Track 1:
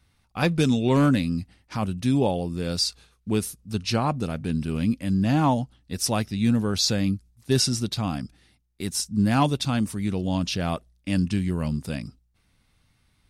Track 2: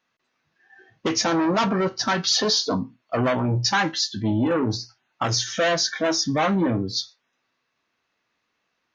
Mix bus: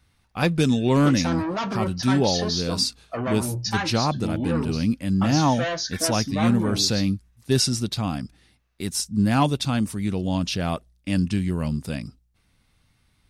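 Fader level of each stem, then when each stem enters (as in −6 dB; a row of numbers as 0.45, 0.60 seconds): +1.0, −6.0 decibels; 0.00, 0.00 seconds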